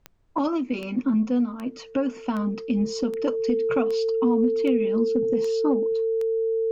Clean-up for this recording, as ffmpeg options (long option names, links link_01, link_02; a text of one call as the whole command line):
ffmpeg -i in.wav -af "adeclick=threshold=4,bandreject=frequency=450:width=30,agate=range=-21dB:threshold=-33dB" out.wav